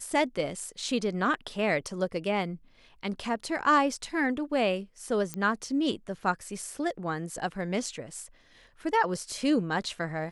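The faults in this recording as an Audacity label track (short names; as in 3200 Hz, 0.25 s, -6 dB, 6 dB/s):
5.340000	5.340000	pop -18 dBFS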